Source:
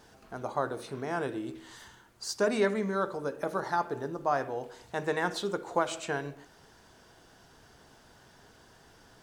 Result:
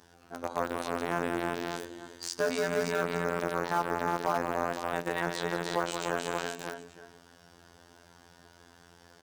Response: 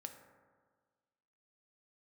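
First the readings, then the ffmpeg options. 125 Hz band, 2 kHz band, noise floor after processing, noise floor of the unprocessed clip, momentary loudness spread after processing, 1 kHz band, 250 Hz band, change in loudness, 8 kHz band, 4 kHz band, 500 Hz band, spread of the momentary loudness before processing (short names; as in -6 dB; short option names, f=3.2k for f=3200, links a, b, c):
+0.5 dB, +2.5 dB, -59 dBFS, -59 dBFS, 10 LU, +1.5 dB, 0.0 dB, +0.5 dB, +2.5 dB, +2.0 dB, 0.0 dB, 13 LU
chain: -filter_complex "[0:a]aecho=1:1:173|291|348|508|578|879:0.376|0.398|0.447|0.266|0.376|0.126,afftfilt=real='hypot(re,im)*cos(PI*b)':imag='0':win_size=2048:overlap=0.75,asplit=2[a][b];[b]aeval=exprs='val(0)*gte(abs(val(0)),0.0501)':c=same,volume=-4dB[c];[a][c]amix=inputs=2:normalize=0,acontrast=49,highpass=44,alimiter=limit=-9.5dB:level=0:latency=1:release=110,volume=-4.5dB"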